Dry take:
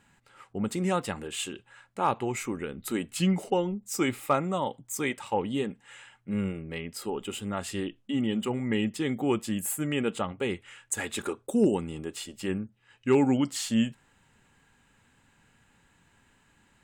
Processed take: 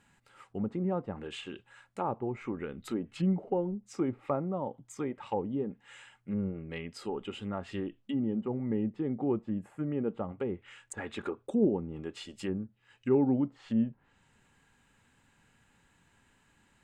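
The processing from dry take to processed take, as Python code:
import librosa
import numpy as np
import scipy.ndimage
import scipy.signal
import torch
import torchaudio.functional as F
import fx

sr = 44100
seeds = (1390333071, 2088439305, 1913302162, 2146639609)

y = fx.env_lowpass_down(x, sr, base_hz=730.0, full_db=-26.0)
y = y * librosa.db_to_amplitude(-3.0)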